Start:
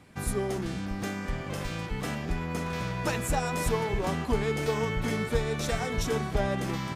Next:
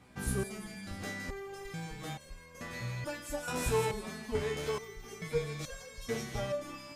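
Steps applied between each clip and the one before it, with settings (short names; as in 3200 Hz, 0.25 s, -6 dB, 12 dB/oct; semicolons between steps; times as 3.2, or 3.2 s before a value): thin delay 0.164 s, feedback 56%, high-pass 2300 Hz, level -5 dB; stepped resonator 2.3 Hz 63–540 Hz; gain +4.5 dB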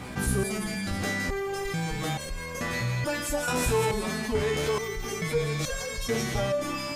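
fast leveller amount 50%; gain +4 dB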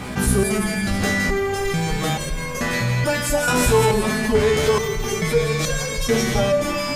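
reverb RT60 1.9 s, pre-delay 5 ms, DRR 9.5 dB; gain +8 dB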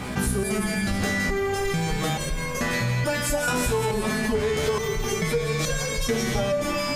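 compressor, threshold -19 dBFS, peak gain reduction 8 dB; gain -1.5 dB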